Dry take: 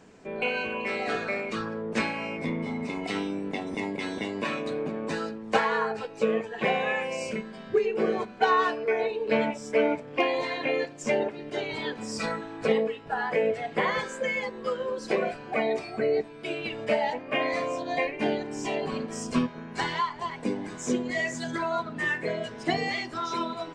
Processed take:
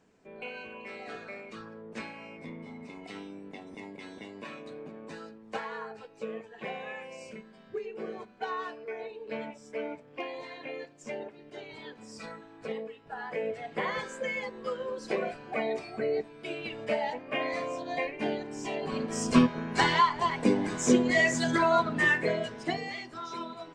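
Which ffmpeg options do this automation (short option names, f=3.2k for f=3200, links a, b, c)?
-af "volume=5dB,afade=t=in:st=12.88:d=1.24:silence=0.398107,afade=t=in:st=18.81:d=0.6:silence=0.334965,afade=t=out:st=21.92:d=0.9:silence=0.223872"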